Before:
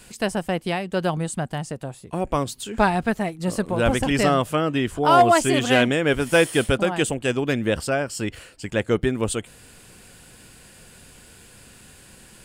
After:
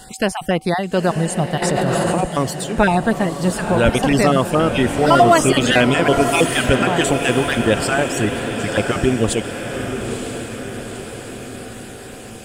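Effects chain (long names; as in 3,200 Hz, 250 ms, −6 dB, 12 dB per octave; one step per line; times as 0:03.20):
time-frequency cells dropped at random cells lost 26%
in parallel at +2 dB: brickwall limiter −14 dBFS, peak gain reduction 8 dB
on the sum: steady tone 760 Hz −45 dBFS
on a send: feedback delay with all-pass diffusion 942 ms, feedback 57%, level −7 dB
0:01.62–0:02.21: on the sum: envelope flattener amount 100%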